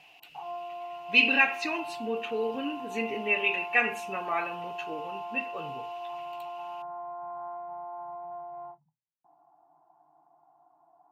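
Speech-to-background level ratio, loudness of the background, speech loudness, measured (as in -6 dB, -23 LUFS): 12.0 dB, -39.5 LUFS, -27.5 LUFS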